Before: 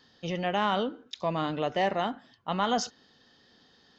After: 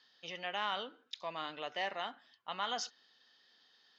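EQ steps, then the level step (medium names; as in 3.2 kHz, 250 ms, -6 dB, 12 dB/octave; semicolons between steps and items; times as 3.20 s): band-pass filter 6.4 kHz, Q 0.6; distance through air 62 m; treble shelf 4.8 kHz -11.5 dB; +4.0 dB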